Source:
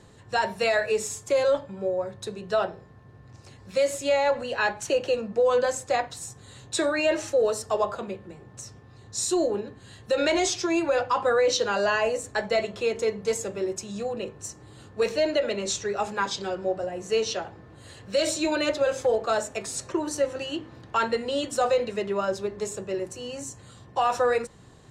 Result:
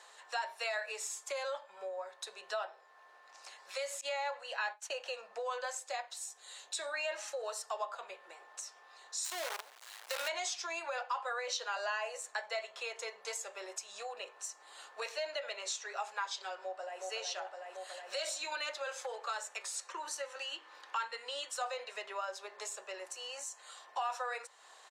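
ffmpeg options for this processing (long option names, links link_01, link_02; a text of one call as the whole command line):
ffmpeg -i in.wav -filter_complex "[0:a]asettb=1/sr,asplit=3[link_01][link_02][link_03];[link_01]atrim=end=4.014[link_04];[link_02]atrim=start=4.01:end=5.06,asetpts=PTS-STARTPTS,afade=type=in:duration=0.004:curve=qsin,afade=type=out:start_time=1.046:duration=0.004:curve=qsin,agate=range=-33dB:threshold=-32dB:ratio=3:release=100:detection=peak[link_05];[link_03]atrim=start=5.056[link_06];[link_04][link_05]acrossfade=duration=0.004:curve1=hsin:curve2=qsin[link_07];[link_07][link_06]acrossfade=duration=0.004:curve1=qsin:curve2=hsin,asettb=1/sr,asplit=3[link_08][link_09][link_10];[link_08]atrim=end=5.794[link_11];[link_09]atrim=start=5.79:end=6.94,asetpts=PTS-STARTPTS,afade=type=in:duration=0.004:curve=qsin,afade=type=out:start_time=1.146:duration=0.004:curve=qsin,equalizer=frequency=1200:width_type=o:width=1.7:gain=-6[link_12];[link_10]atrim=start=6.936[link_13];[link_11][link_12]acrossfade=duration=0.004:curve1=hsin:curve2=qsin[link_14];[link_14][link_13]acrossfade=duration=0.004:curve1=qsin:curve2=hsin,asplit=3[link_15][link_16][link_17];[link_15]afade=type=out:start_time=9.24:duration=0.02[link_18];[link_16]acrusher=bits=5:dc=4:mix=0:aa=0.000001,afade=type=in:start_time=9.24:duration=0.02,afade=type=out:start_time=10.27:duration=0.02[link_19];[link_17]afade=type=in:start_time=10.27:duration=0.02[link_20];[link_18][link_19][link_20]amix=inputs=3:normalize=0,asplit=2[link_21][link_22];[link_22]afade=type=in:start_time=16.61:duration=0.01,afade=type=out:start_time=17.02:duration=0.01,aecho=0:1:370|740|1110|1480|1850|2220|2590|2960|3330|3700|4070|4440:0.668344|0.467841|0.327489|0.229242|0.160469|0.112329|0.07863|0.055041|0.0385287|0.0269701|0.0188791|0.0132153[link_23];[link_21][link_23]amix=inputs=2:normalize=0,asettb=1/sr,asplit=3[link_24][link_25][link_26];[link_24]atrim=end=18.384[link_27];[link_25]atrim=start=18.38:end=21.62,asetpts=PTS-STARTPTS,afade=type=in:duration=0.004:curve=qsin,afade=type=out:start_time=3.236:duration=0.004:curve=qsin,equalizer=frequency=670:width=6.1:gain=-12.5[link_28];[link_26]atrim=start=21.616[link_29];[link_27][link_28]acrossfade=duration=0.004:curve1=hsin:curve2=qsin[link_30];[link_30][link_29]acrossfade=duration=0.004:curve1=qsin:curve2=hsin,highpass=frequency=710:width=0.5412,highpass=frequency=710:width=1.3066,acompressor=threshold=-47dB:ratio=2,highshelf=frequency=11000:gain=-3,volume=2.5dB" out.wav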